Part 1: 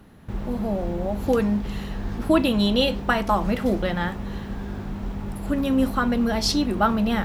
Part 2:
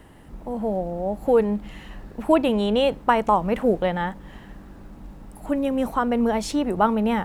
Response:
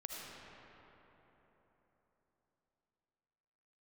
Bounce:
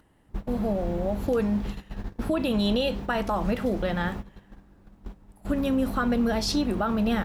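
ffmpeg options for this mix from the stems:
-filter_complex "[0:a]alimiter=limit=-15dB:level=0:latency=1:release=42,volume=-1.5dB[link_01];[1:a]adelay=4.6,volume=-14dB,asplit=2[link_02][link_03];[link_03]apad=whole_len=319675[link_04];[link_01][link_04]sidechaingate=range=-33dB:threshold=-50dB:ratio=16:detection=peak[link_05];[link_05][link_02]amix=inputs=2:normalize=0,alimiter=limit=-16.5dB:level=0:latency=1:release=308"

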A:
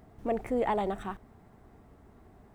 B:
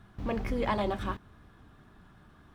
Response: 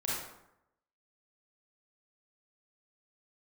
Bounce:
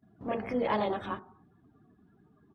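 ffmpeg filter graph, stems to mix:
-filter_complex "[0:a]volume=-8dB,asplit=2[link_01][link_02];[link_02]volume=-9.5dB[link_03];[1:a]adelay=24,volume=-1dB[link_04];[2:a]atrim=start_sample=2205[link_05];[link_03][link_05]afir=irnorm=-1:irlink=0[link_06];[link_01][link_04][link_06]amix=inputs=3:normalize=0,afftdn=noise_reduction=20:noise_floor=-52,highpass=160"

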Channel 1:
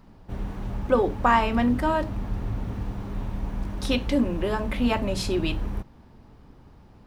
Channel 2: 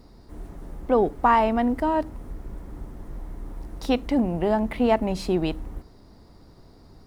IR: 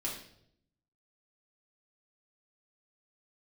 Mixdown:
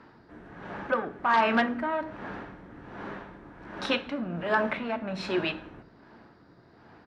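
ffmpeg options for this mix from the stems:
-filter_complex "[0:a]highpass=330,aeval=exprs='val(0)*pow(10,-19*(0.5-0.5*cos(2*PI*1.3*n/s))/20)':channel_layout=same,volume=2dB,asplit=2[link_01][link_02];[link_02]volume=-13.5dB[link_03];[1:a]alimiter=limit=-17dB:level=0:latency=1:release=169,asoftclip=type=tanh:threshold=-24dB,adelay=2.5,volume=-6.5dB,asplit=2[link_04][link_05];[link_05]volume=-7dB[link_06];[2:a]atrim=start_sample=2205[link_07];[link_03][link_06]amix=inputs=2:normalize=0[link_08];[link_08][link_07]afir=irnorm=-1:irlink=0[link_09];[link_01][link_04][link_09]amix=inputs=3:normalize=0,equalizer=frequency=1600:width=2.5:gain=10,aeval=exprs='0.2*(abs(mod(val(0)/0.2+3,4)-2)-1)':channel_layout=same,highpass=110,lowpass=3500"

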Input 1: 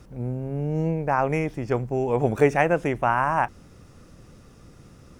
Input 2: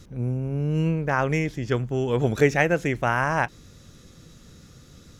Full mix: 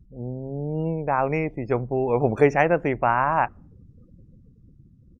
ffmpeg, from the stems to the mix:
ffmpeg -i stem1.wav -i stem2.wav -filter_complex "[0:a]dynaudnorm=framelen=230:gausssize=11:maxgain=3.5dB,volume=-1.5dB[link_01];[1:a]acompressor=threshold=-28dB:ratio=6,volume=-1,adelay=0.5,volume=-10.5dB[link_02];[link_01][link_02]amix=inputs=2:normalize=0,afftdn=noise_reduction=33:noise_floor=-42" out.wav

